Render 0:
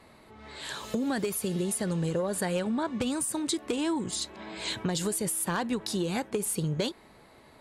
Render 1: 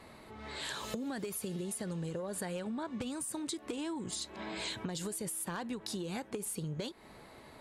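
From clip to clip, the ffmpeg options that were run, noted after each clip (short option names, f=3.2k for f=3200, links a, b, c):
-af "acompressor=threshold=-38dB:ratio=6,volume=1.5dB"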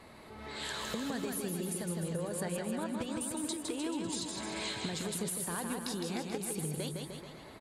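-af "aecho=1:1:160|304|433.6|550.2|655.2:0.631|0.398|0.251|0.158|0.1"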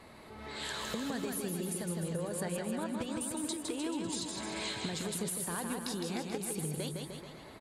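-af anull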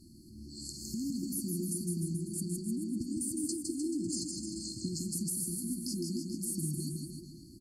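-af "afftfilt=real='re*(1-between(b*sr/4096,370,4200))':imag='im*(1-between(b*sr/4096,370,4200))':win_size=4096:overlap=0.75,volume=2.5dB"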